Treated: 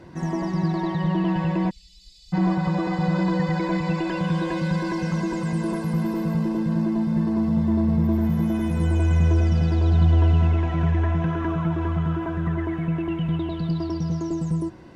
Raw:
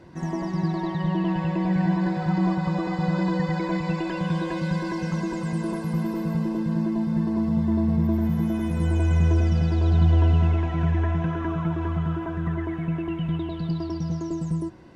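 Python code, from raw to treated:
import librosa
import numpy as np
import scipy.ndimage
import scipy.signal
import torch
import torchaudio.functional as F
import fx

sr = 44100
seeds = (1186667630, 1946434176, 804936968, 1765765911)

p1 = fx.cheby2_bandstop(x, sr, low_hz=130.0, high_hz=1700.0, order=4, stop_db=50, at=(1.69, 2.32), fade=0.02)
p2 = 10.0 ** (-26.5 / 20.0) * np.tanh(p1 / 10.0 ** (-26.5 / 20.0))
y = p1 + (p2 * librosa.db_to_amplitude(-7.0))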